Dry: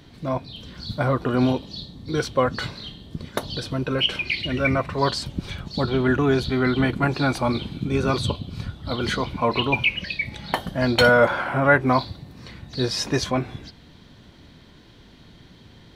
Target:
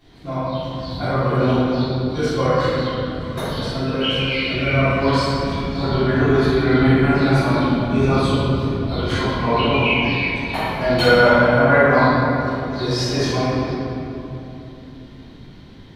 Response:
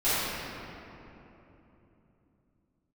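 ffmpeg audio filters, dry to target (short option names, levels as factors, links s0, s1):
-filter_complex "[1:a]atrim=start_sample=2205[s0];[0:a][s0]afir=irnorm=-1:irlink=0,volume=0.299"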